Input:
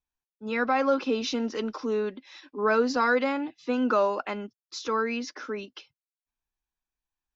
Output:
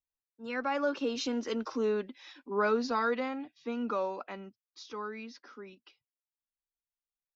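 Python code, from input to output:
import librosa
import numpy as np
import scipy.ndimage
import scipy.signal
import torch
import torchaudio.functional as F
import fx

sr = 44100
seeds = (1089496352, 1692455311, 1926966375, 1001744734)

p1 = fx.doppler_pass(x, sr, speed_mps=20, closest_m=15.0, pass_at_s=1.92)
p2 = fx.rider(p1, sr, range_db=10, speed_s=2.0)
p3 = p1 + (p2 * librosa.db_to_amplitude(1.0))
y = p3 * librosa.db_to_amplitude(-8.0)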